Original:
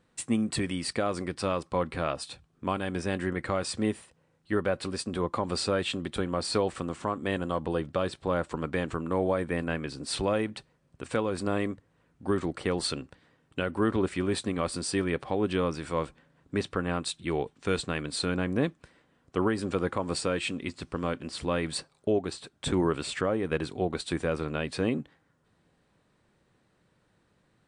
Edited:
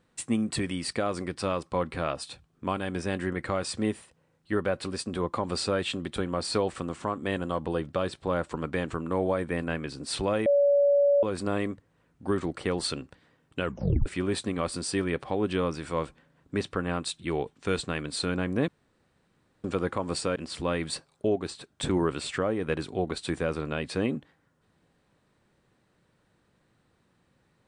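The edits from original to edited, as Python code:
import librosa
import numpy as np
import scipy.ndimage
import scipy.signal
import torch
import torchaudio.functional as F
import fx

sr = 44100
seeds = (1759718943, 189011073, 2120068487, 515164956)

y = fx.edit(x, sr, fx.bleep(start_s=10.46, length_s=0.77, hz=569.0, db=-18.0),
    fx.tape_stop(start_s=13.63, length_s=0.43),
    fx.room_tone_fill(start_s=18.68, length_s=0.96),
    fx.cut(start_s=20.36, length_s=0.83), tone=tone)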